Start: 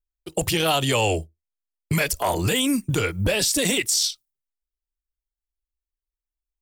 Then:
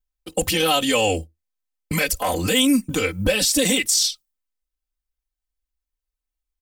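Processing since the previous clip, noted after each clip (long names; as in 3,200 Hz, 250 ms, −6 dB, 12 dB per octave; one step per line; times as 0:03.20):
dynamic equaliser 930 Hz, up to −4 dB, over −36 dBFS, Q 2.3
comb filter 3.9 ms, depth 88%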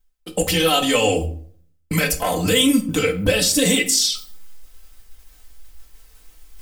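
reversed playback
upward compression, threshold −20 dBFS
reversed playback
convolution reverb RT60 0.55 s, pre-delay 4 ms, DRR 3.5 dB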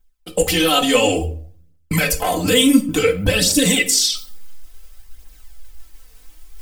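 phase shifter 0.57 Hz, delay 4.4 ms, feedback 42%
level +1 dB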